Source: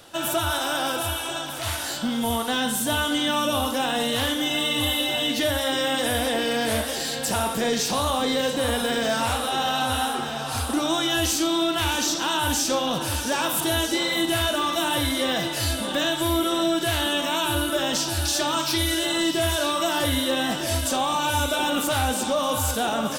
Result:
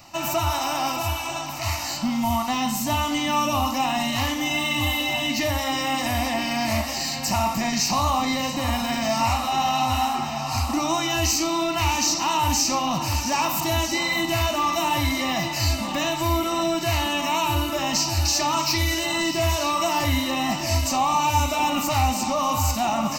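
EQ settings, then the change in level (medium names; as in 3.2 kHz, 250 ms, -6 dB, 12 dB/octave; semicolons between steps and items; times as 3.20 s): static phaser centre 2.3 kHz, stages 8; +5.0 dB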